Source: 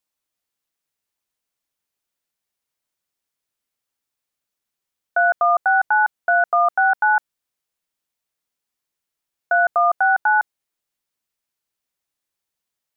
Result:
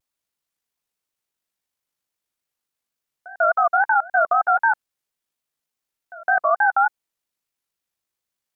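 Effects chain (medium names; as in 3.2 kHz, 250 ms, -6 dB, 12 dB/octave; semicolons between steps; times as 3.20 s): pre-echo 234 ms -21 dB; wow and flutter 120 cents; granular stretch 0.66×, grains 39 ms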